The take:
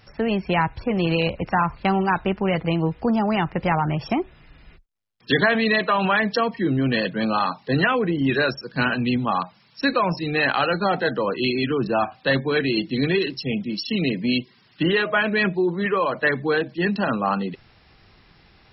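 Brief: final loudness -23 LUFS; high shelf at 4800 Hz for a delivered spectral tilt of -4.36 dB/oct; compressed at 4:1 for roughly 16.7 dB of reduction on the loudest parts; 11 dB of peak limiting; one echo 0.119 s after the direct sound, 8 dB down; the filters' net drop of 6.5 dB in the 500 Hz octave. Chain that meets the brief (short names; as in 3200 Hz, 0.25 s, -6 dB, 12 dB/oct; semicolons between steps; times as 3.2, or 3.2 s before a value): bell 500 Hz -8.5 dB; high shelf 4800 Hz -4.5 dB; compressor 4:1, threshold -38 dBFS; limiter -33 dBFS; echo 0.119 s -8 dB; gain +18.5 dB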